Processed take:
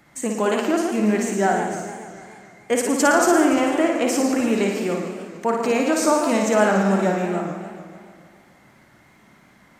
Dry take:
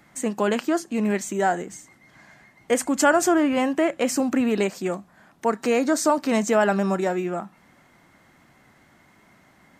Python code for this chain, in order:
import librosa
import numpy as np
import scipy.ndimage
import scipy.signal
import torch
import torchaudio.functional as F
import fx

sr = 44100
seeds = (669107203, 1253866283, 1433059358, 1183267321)

p1 = x + fx.room_flutter(x, sr, wall_m=9.7, rt60_s=0.8, dry=0)
y = fx.echo_warbled(p1, sr, ms=146, feedback_pct=64, rate_hz=2.8, cents=209, wet_db=-10)